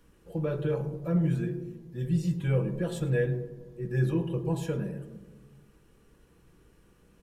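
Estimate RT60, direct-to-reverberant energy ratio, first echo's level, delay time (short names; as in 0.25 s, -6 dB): 1.3 s, 7.5 dB, -18.5 dB, 0.106 s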